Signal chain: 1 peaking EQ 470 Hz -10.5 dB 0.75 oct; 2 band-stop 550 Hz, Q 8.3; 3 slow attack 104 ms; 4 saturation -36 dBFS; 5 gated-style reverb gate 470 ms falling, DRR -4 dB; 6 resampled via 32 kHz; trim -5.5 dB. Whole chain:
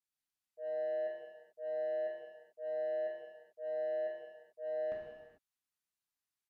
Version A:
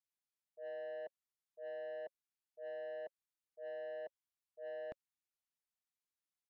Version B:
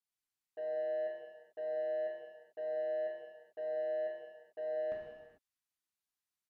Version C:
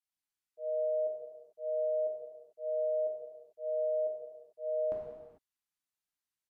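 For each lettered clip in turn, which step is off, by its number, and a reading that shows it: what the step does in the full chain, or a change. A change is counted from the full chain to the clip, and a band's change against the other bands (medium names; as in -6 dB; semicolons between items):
5, momentary loudness spread change +2 LU; 3, momentary loudness spread change -1 LU; 4, distortion -12 dB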